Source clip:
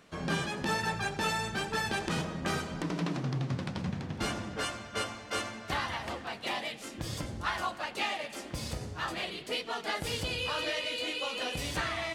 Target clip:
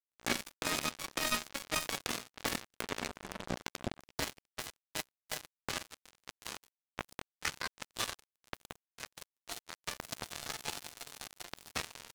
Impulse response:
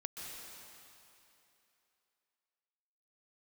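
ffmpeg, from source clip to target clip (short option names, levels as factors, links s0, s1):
-filter_complex "[0:a]asplit=2[s0][s1];[s1]adelay=460.6,volume=0.501,highshelf=f=4000:g=-10.4[s2];[s0][s2]amix=inputs=2:normalize=0,asetrate=62367,aresample=44100,atempo=0.707107,acrusher=bits=3:mix=0:aa=0.5,volume=1.26"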